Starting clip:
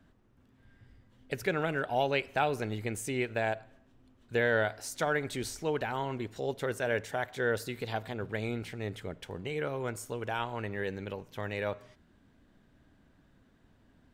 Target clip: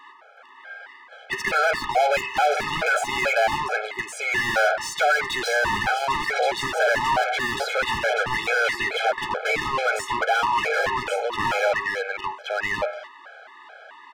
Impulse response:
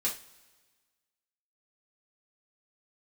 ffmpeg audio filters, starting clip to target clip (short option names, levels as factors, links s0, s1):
-filter_complex "[0:a]highpass=f=640:w=0.5412,highpass=f=640:w=1.3066,aemphasis=mode=reproduction:type=75fm,aecho=1:1:1123:0.501,asplit=2[s0][s1];[s1]highpass=f=720:p=1,volume=56.2,asoftclip=type=tanh:threshold=0.141[s2];[s0][s2]amix=inputs=2:normalize=0,lowpass=f=2500:p=1,volume=0.501,afftfilt=real='re*gt(sin(2*PI*2.3*pts/sr)*(1-2*mod(floor(b*sr/1024/430),2)),0)':imag='im*gt(sin(2*PI*2.3*pts/sr)*(1-2*mod(floor(b*sr/1024/430),2)),0)':win_size=1024:overlap=0.75,volume=2"